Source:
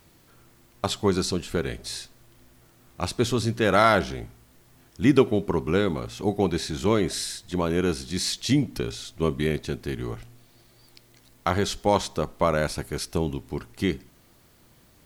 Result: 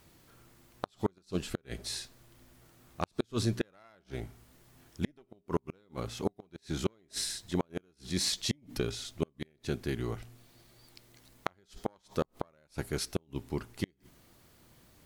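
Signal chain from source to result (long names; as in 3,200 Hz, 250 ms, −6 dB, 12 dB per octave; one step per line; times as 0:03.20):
harmonic generator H 2 −8 dB, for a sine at −5 dBFS
gate with flip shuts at −13 dBFS, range −38 dB
level −3.5 dB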